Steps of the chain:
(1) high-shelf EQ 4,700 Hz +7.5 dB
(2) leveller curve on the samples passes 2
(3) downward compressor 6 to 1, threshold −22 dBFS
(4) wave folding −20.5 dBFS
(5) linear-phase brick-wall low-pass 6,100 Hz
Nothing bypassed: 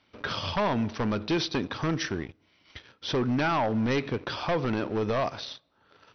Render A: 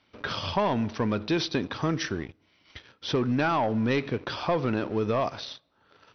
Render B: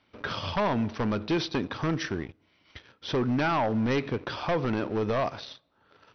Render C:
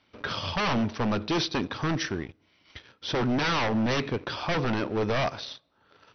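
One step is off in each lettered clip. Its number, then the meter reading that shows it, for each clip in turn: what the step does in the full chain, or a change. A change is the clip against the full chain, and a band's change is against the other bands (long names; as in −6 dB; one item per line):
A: 4, distortion level −13 dB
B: 1, 4 kHz band −2.5 dB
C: 3, average gain reduction 2.0 dB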